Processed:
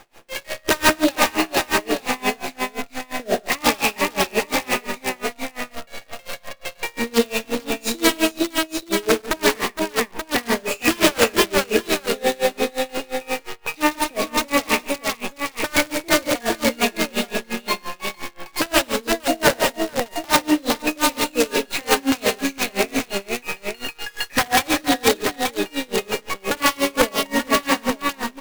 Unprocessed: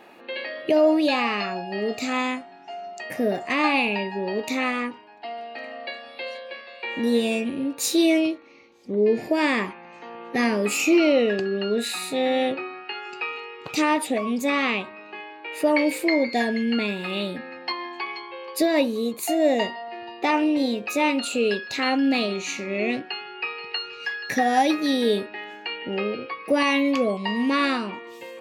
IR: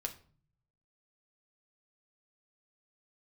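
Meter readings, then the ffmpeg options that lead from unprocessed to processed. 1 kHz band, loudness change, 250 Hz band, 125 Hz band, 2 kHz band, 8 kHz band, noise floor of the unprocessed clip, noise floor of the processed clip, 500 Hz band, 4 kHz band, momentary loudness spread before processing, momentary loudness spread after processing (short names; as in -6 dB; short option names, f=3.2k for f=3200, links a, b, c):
+3.5 dB, +2.5 dB, -1.0 dB, n/a, +4.5 dB, +9.5 dB, -45 dBFS, -49 dBFS, +1.5 dB, +6.5 dB, 15 LU, 11 LU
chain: -af "highpass=f=410:p=1,highshelf=f=4.3k:g=-9,bandreject=f=1.3k:w=7.7,acrusher=bits=6:dc=4:mix=0:aa=0.000001,aeval=exprs='(mod(6.31*val(0)+1,2)-1)/6.31':c=same,aecho=1:1:56|102|144|461|881:0.335|0.335|0.335|0.708|0.531,aeval=exprs='val(0)*pow(10,-28*(0.5-0.5*cos(2*PI*5.7*n/s))/20)':c=same,volume=8.5dB"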